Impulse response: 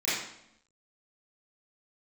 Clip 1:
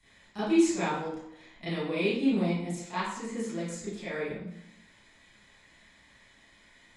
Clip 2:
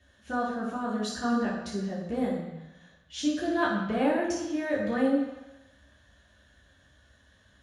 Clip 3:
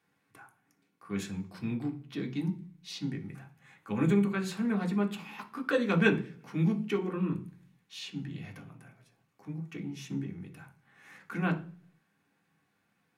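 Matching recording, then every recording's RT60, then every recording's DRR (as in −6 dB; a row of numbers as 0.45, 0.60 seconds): 1; 0.75, 1.0, 0.45 seconds; −13.0, −7.0, 1.0 decibels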